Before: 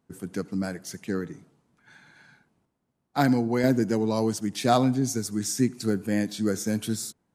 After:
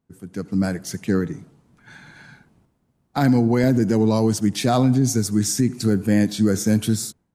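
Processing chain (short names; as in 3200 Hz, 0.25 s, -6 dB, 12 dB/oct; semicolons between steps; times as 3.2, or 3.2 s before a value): low shelf 160 Hz +10 dB; limiter -15.5 dBFS, peak gain reduction 8 dB; AGC gain up to 15.5 dB; gain -7 dB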